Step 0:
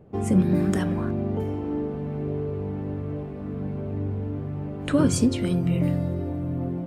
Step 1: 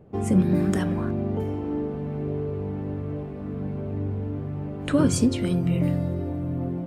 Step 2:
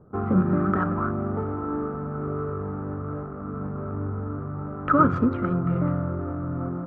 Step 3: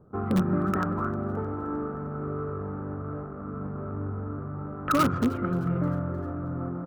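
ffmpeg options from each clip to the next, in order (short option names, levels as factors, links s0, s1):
-af anull
-af "adynamicsmooth=sensitivity=7.5:basefreq=560,lowpass=f=1300:t=q:w=15,volume=0.841"
-filter_complex "[0:a]asplit=2[s0][s1];[s1]aeval=exprs='(mod(4.22*val(0)+1,2)-1)/4.22':c=same,volume=0.335[s2];[s0][s2]amix=inputs=2:normalize=0,asplit=5[s3][s4][s5][s6][s7];[s4]adelay=308,afreqshift=110,volume=0.0891[s8];[s5]adelay=616,afreqshift=220,volume=0.0457[s9];[s6]adelay=924,afreqshift=330,volume=0.0232[s10];[s7]adelay=1232,afreqshift=440,volume=0.0119[s11];[s3][s8][s9][s10][s11]amix=inputs=5:normalize=0,volume=0.531"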